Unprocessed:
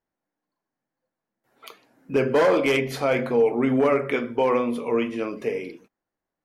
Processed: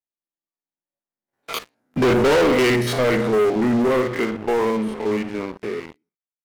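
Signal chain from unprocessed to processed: spectrogram pixelated in time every 50 ms; Doppler pass-by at 1.59 s, 35 m/s, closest 16 m; waveshaping leveller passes 5; trim +1.5 dB

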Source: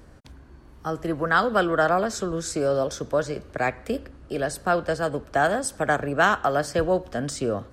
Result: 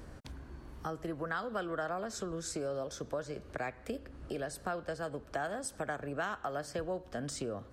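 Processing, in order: compression 3:1, threshold -39 dBFS, peak gain reduction 18 dB

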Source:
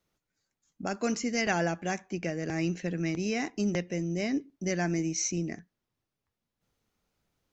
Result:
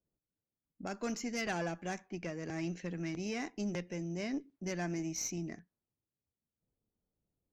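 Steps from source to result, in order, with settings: level-controlled noise filter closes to 520 Hz, open at -29 dBFS; valve stage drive 21 dB, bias 0.35; trim -5.5 dB

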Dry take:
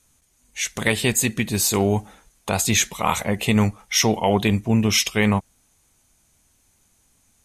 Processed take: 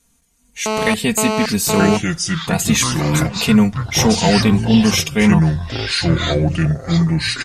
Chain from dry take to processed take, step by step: peaking EQ 140 Hz +7 dB 1.6 oct; comb 4.3 ms, depth 76%; 2.99–3.47 s: compressor with a negative ratio -24 dBFS, ratio -1; ever faster or slower copies 641 ms, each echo -5 st, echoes 3; 0.66–1.97 s: mobile phone buzz -18 dBFS; trim -1 dB

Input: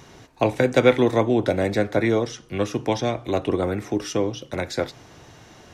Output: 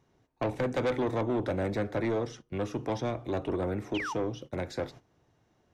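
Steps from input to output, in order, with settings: gate -38 dBFS, range -16 dB; tilt shelf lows +4.5 dB, about 1.4 kHz; painted sound fall, 3.94–4.14 s, 800–3400 Hz -26 dBFS; saturation -15.5 dBFS, distortion -8 dB; trim -8.5 dB

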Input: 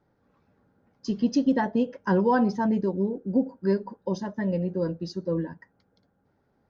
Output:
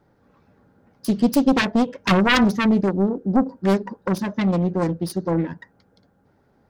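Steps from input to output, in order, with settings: self-modulated delay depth 0.69 ms; dynamic bell 740 Hz, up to -5 dB, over -37 dBFS, Q 0.8; trim +8.5 dB

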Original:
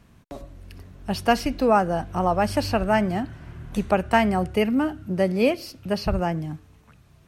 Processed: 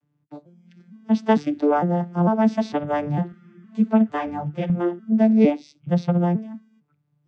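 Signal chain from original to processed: vocoder on a broken chord minor triad, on D3, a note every 453 ms; spectral noise reduction 17 dB; 3.32–4.70 s: three-phase chorus; trim +3.5 dB

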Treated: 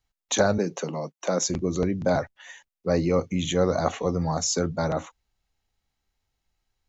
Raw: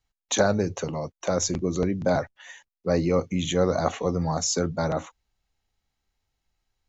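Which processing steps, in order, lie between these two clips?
0.58–1.50 s: steep high-pass 150 Hz 48 dB/octave

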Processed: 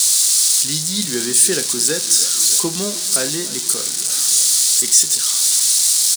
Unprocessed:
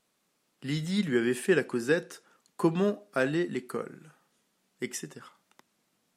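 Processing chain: zero-crossing glitches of -19 dBFS; high-order bell 6 kHz +14.5 dB; doubling 33 ms -13.5 dB; modulated delay 306 ms, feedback 68%, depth 117 cents, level -17.5 dB; trim +1.5 dB

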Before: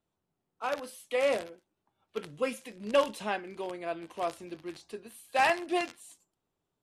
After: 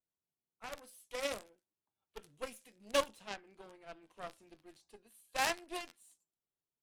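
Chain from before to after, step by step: Chebyshev shaper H 3 -12 dB, 4 -23 dB, 6 -19 dB, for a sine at -15 dBFS; treble shelf 5.5 kHz +11 dB, from 3.13 s +2.5 dB, from 4.38 s +8 dB; trim -5.5 dB

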